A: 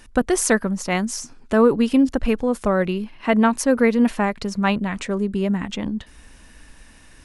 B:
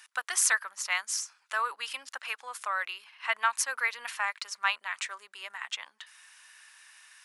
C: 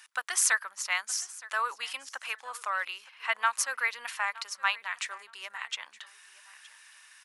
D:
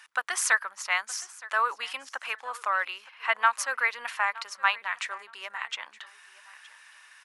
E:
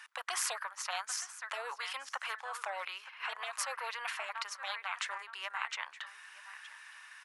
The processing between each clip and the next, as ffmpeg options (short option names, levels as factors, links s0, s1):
-af "highpass=f=1100:w=0.5412,highpass=f=1100:w=1.3066,volume=0.794"
-af "aecho=1:1:918|1836:0.1|0.023"
-af "highshelf=f=3300:g=-11,volume=2"
-af "highpass=1100,afftfilt=real='re*lt(hypot(re,im),0.0708)':imag='im*lt(hypot(re,im),0.0708)':win_size=1024:overlap=0.75,tiltshelf=f=1400:g=5.5,volume=1.41"